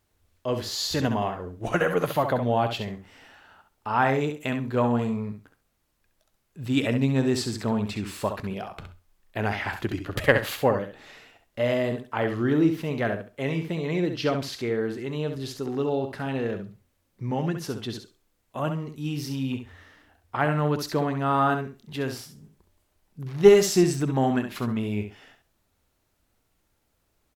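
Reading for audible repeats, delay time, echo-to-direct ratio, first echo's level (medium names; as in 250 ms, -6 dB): 2, 67 ms, -8.0 dB, -8.0 dB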